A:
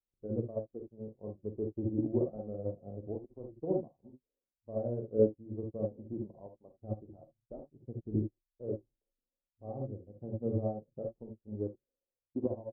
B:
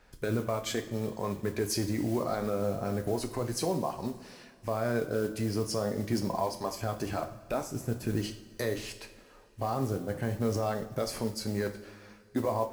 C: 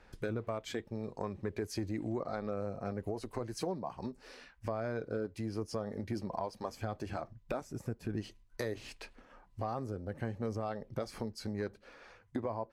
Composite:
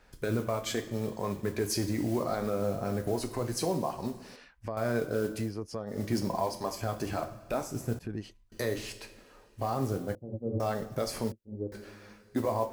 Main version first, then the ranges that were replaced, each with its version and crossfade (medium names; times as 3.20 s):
B
4.36–4.77 s: from C
5.46–5.94 s: from C, crossfade 0.16 s
7.99–8.52 s: from C
10.15–10.60 s: from A
11.32–11.72 s: from A